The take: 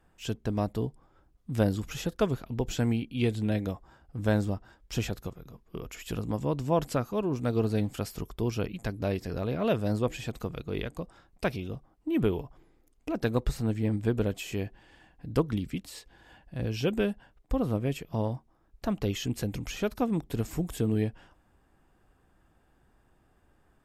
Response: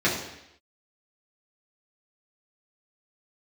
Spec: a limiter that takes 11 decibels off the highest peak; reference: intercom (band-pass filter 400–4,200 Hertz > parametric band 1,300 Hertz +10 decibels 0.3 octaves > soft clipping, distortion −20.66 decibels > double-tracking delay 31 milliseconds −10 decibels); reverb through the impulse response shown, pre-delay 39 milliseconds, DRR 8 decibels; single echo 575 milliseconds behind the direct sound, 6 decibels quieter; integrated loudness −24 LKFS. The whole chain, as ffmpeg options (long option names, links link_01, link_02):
-filter_complex "[0:a]alimiter=limit=-21.5dB:level=0:latency=1,aecho=1:1:575:0.501,asplit=2[link_01][link_02];[1:a]atrim=start_sample=2205,adelay=39[link_03];[link_02][link_03]afir=irnorm=-1:irlink=0,volume=-23.5dB[link_04];[link_01][link_04]amix=inputs=2:normalize=0,highpass=400,lowpass=4200,equalizer=frequency=1300:width_type=o:width=0.3:gain=10,asoftclip=threshold=-24dB,asplit=2[link_05][link_06];[link_06]adelay=31,volume=-10dB[link_07];[link_05][link_07]amix=inputs=2:normalize=0,volume=14.5dB"